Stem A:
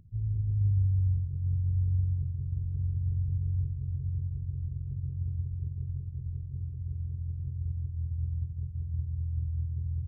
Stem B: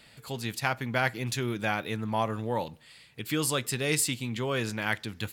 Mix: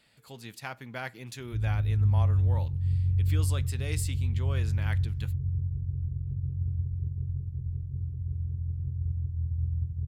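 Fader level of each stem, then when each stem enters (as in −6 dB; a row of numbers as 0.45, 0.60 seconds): +2.5, −10.0 decibels; 1.40, 0.00 seconds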